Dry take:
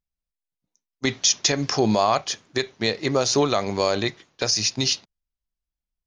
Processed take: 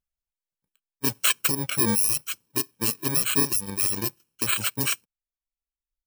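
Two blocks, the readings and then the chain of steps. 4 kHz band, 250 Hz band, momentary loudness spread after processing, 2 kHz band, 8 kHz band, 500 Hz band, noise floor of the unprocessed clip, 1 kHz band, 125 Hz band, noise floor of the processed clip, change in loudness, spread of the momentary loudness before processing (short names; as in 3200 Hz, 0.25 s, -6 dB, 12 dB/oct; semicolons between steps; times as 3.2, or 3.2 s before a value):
-6.5 dB, -5.0 dB, 8 LU, -1.5 dB, -0.5 dB, -12.5 dB, under -85 dBFS, -10.0 dB, -4.0 dB, under -85 dBFS, -1.0 dB, 8 LU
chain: FFT order left unsorted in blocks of 64 samples; reverb removal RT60 1.4 s; gain -1.5 dB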